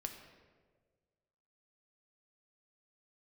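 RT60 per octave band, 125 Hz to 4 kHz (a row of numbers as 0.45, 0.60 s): 1.9, 1.6, 1.8, 1.3, 1.1, 0.90 s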